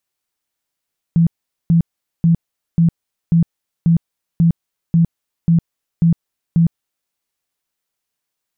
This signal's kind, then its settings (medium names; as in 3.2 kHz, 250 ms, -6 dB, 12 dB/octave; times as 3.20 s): tone bursts 167 Hz, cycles 18, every 0.54 s, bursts 11, -8.5 dBFS